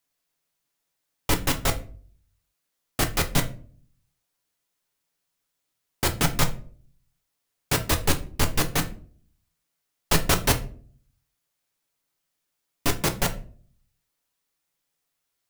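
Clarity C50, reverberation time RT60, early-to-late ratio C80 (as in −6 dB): 14.5 dB, 0.45 s, 20.0 dB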